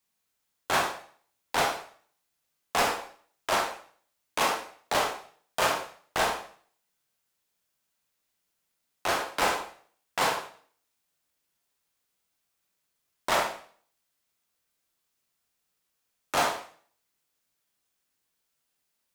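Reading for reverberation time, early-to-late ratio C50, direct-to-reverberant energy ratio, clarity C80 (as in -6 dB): 0.50 s, 6.5 dB, 1.5 dB, 10.5 dB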